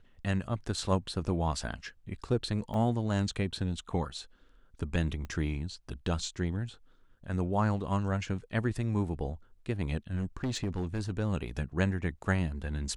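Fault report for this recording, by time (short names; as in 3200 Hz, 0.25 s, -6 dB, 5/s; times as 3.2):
2.74 gap 2 ms
5.25 pop -28 dBFS
10.16–11.1 clipped -28 dBFS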